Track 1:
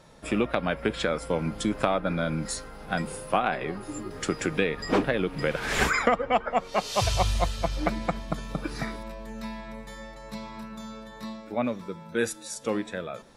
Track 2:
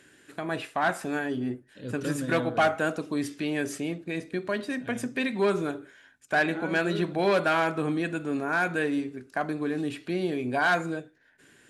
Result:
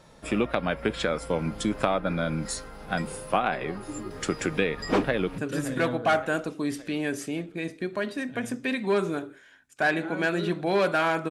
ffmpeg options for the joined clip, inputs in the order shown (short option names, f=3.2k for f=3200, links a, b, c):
-filter_complex "[0:a]apad=whole_dur=11.3,atrim=end=11.3,atrim=end=5.382[a];[1:a]atrim=start=1.898:end=7.82[b];[a][b]acrossfade=d=0.004:c1=hsin:c2=hsin,asplit=2[c][d];[d]afade=t=in:st=5:d=0.01,afade=t=out:st=5.38:d=0.01,aecho=0:1:570|1140|1710|2280|2850|3420:0.199526|0.109739|0.0603567|0.0331962|0.0182579|0.0100418[e];[c][e]amix=inputs=2:normalize=0"